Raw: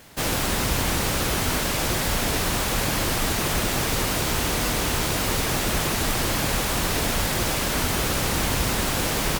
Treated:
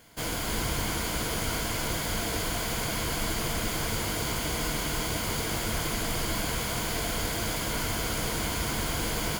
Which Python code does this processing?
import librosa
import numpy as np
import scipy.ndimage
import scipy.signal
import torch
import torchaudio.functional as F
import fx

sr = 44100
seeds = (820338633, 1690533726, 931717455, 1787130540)

p1 = fx.ripple_eq(x, sr, per_octave=1.8, db=7)
p2 = p1 + fx.echo_single(p1, sr, ms=287, db=-5.5, dry=0)
y = F.gain(torch.from_numpy(p2), -8.0).numpy()